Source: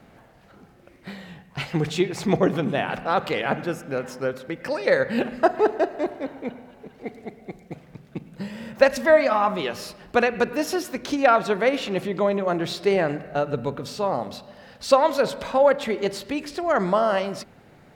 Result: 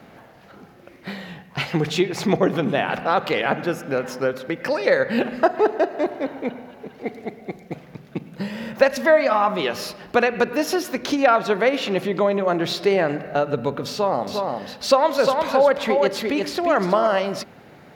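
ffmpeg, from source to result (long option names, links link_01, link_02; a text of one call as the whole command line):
ffmpeg -i in.wav -filter_complex "[0:a]asettb=1/sr,asplit=3[link_01][link_02][link_03];[link_01]atrim=end=13.924[link_04];[link_02]atrim=start=13.92:end=17.07,asetpts=PTS-STARTPTS,afade=type=in:duration=0.004:curve=qsin,afade=type=out:start_time=3.146:duration=0.004:curve=qsin,aecho=1:1:352:0.531,atrim=end_sample=138915[link_05];[link_03]atrim=start=17.066[link_06];[link_04][link_05]acrossfade=duration=0.004:curve1=hsin:curve2=qsin[link_07];[link_07][link_06]acrossfade=duration=0.004:curve1=qsin:curve2=hsin,highpass=frequency=150:poles=1,equalizer=frequency=8300:width_type=o:width=0.41:gain=-7,acompressor=threshold=-28dB:ratio=1.5,volume=6.5dB" out.wav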